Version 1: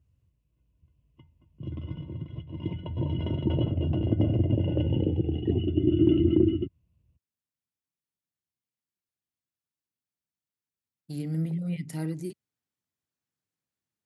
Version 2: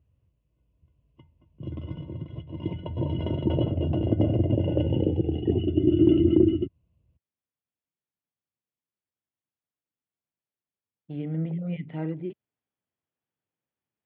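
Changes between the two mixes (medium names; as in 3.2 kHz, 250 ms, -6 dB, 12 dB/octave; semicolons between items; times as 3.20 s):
speech: add Chebyshev low-pass 3.4 kHz, order 6; master: add peaking EQ 580 Hz +6 dB 1.5 oct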